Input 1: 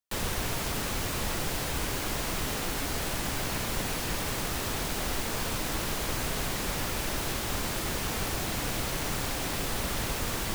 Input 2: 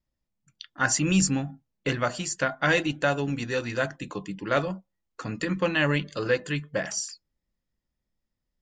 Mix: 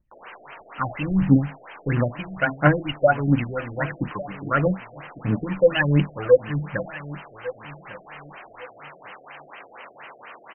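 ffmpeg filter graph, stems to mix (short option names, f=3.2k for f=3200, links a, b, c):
-filter_complex "[0:a]highpass=790,volume=-2dB[a];[1:a]aphaser=in_gain=1:out_gain=1:delay=2:decay=0.75:speed=1.5:type=triangular,volume=1dB,asplit=2[b][c];[c]volume=-17dB,aecho=0:1:1151|2302|3453|4604:1|0.24|0.0576|0.0138[d];[a][b][d]amix=inputs=3:normalize=0,afftfilt=real='re*lt(b*sr/1024,710*pow(3200/710,0.5+0.5*sin(2*PI*4.2*pts/sr)))':imag='im*lt(b*sr/1024,710*pow(3200/710,0.5+0.5*sin(2*PI*4.2*pts/sr)))':win_size=1024:overlap=0.75"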